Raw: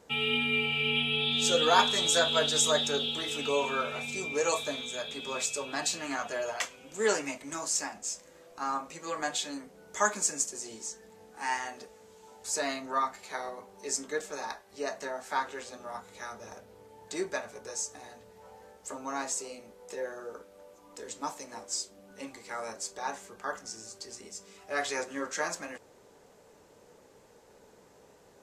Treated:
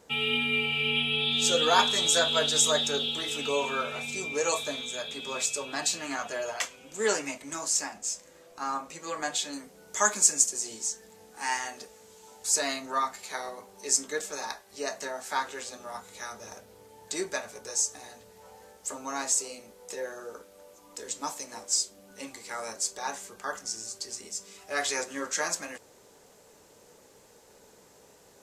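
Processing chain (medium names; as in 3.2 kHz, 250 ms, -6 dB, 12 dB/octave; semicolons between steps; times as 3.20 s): treble shelf 3.4 kHz +4 dB, from 9.53 s +9.5 dB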